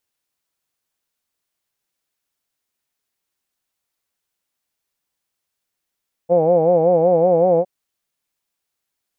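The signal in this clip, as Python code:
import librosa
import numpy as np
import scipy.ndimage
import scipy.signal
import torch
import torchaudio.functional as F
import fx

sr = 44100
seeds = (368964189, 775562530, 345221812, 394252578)

y = fx.formant_vowel(sr, seeds[0], length_s=1.36, hz=166.0, glide_st=1.0, vibrato_hz=5.3, vibrato_st=1.15, f1_hz=520.0, f2_hz=770.0, f3_hz=2300.0)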